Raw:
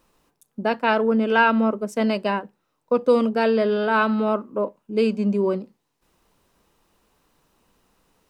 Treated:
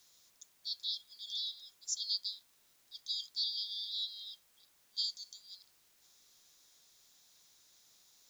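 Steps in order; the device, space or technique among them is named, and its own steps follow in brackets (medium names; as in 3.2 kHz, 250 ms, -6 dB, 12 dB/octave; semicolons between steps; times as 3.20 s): FFT band-pass 3.2–7.3 kHz; turntable without a phono preamp (RIAA curve recording; white noise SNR 26 dB)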